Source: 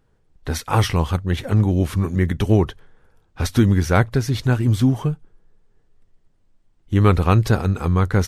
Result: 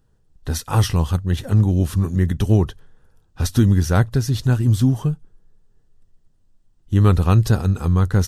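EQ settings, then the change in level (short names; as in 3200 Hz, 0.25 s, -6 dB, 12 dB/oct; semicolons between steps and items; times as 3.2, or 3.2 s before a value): tone controls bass +6 dB, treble +7 dB; notch 2200 Hz, Q 6.1; -4.0 dB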